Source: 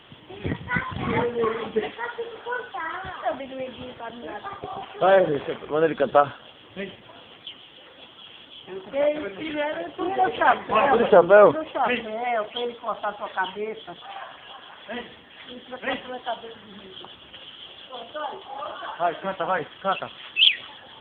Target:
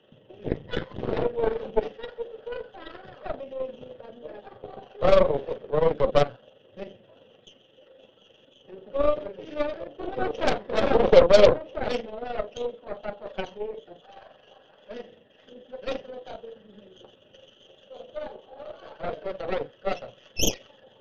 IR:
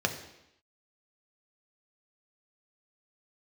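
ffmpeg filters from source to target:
-filter_complex "[1:a]atrim=start_sample=2205,atrim=end_sample=3087,asetrate=48510,aresample=44100[link_01];[0:a][link_01]afir=irnorm=-1:irlink=0,aeval=exprs='2.24*(cos(1*acos(clip(val(0)/2.24,-1,1)))-cos(1*PI/2))+0.891*(cos(8*acos(clip(val(0)/2.24,-1,1)))-cos(8*PI/2))':channel_layout=same,tremolo=f=23:d=0.462,equalizer=frequency=500:width_type=o:width=1:gain=11,equalizer=frequency=1000:width_type=o:width=1:gain=-5,equalizer=frequency=2000:width_type=o:width=1:gain=-6,volume=-17dB"

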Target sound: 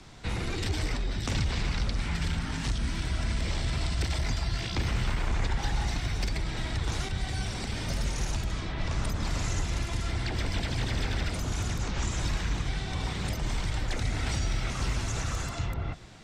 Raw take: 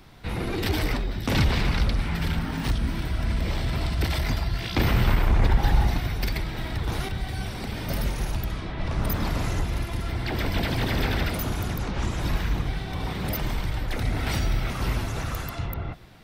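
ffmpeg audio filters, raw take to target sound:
ffmpeg -i in.wav -filter_complex "[0:a]acrossover=split=120|1200[link_01][link_02][link_03];[link_01]acompressor=threshold=-27dB:ratio=4[link_04];[link_02]acompressor=threshold=-37dB:ratio=4[link_05];[link_03]acompressor=threshold=-38dB:ratio=4[link_06];[link_04][link_05][link_06]amix=inputs=3:normalize=0,lowpass=frequency=7300:width_type=q:width=3.1" out.wav

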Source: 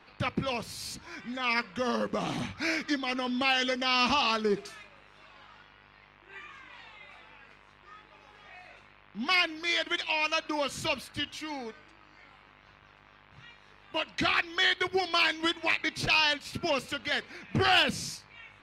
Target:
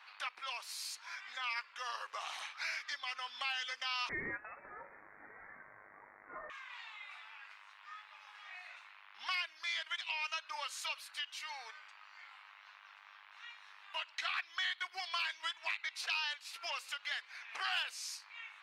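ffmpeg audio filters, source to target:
ffmpeg -i in.wav -filter_complex "[0:a]highpass=frequency=920:width=0.5412,highpass=frequency=920:width=1.3066,acompressor=threshold=-45dB:ratio=2,asettb=1/sr,asplit=3[link_01][link_02][link_03];[link_01]atrim=end=4.094[link_04];[link_02]atrim=start=4.09:end=6.5,asetpts=PTS-STARTPTS,afade=type=in:duration=0.004:curve=qsin,afade=type=out:start_time=2.406:duration=0.004:curve=qsin,lowpass=frequency=2600:width_type=q:width=0.5098,lowpass=frequency=2600:width_type=q:width=0.6013,lowpass=frequency=2600:width_type=q:width=0.9,lowpass=frequency=2600:width_type=q:width=2.563,afreqshift=-3000[link_05];[link_03]atrim=start=6.496[link_06];[link_04][link_05]acrossfade=duration=0.004:curve1=hsin:curve2=qsin[link_07];[link_07][link_06]acrossfade=duration=0.004:curve1=qsin:curve2=hsin,volume=1dB" out.wav

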